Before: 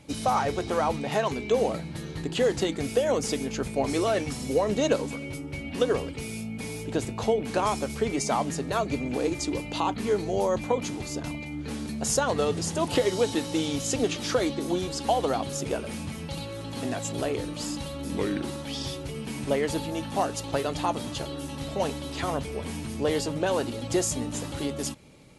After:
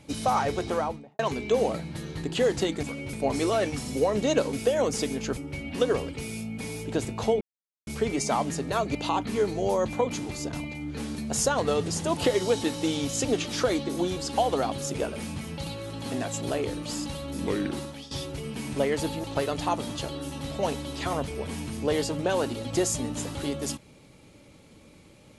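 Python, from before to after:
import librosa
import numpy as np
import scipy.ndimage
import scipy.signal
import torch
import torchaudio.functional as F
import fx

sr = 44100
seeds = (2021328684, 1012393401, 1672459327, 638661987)

y = fx.studio_fade_out(x, sr, start_s=0.65, length_s=0.54)
y = fx.edit(y, sr, fx.swap(start_s=2.83, length_s=0.84, other_s=5.07, other_length_s=0.3),
    fx.silence(start_s=7.41, length_s=0.46),
    fx.cut(start_s=8.95, length_s=0.71),
    fx.fade_out_to(start_s=18.5, length_s=0.32, floor_db=-17.5),
    fx.cut(start_s=19.95, length_s=0.46), tone=tone)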